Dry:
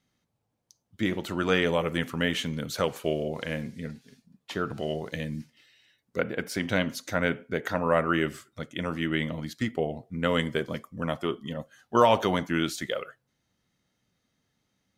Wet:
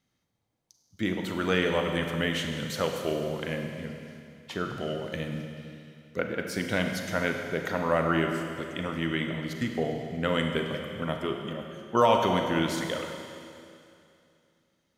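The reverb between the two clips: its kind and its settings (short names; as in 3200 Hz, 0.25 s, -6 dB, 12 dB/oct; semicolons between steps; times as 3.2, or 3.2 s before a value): Schroeder reverb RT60 2.6 s, combs from 33 ms, DRR 3.5 dB; gain -2 dB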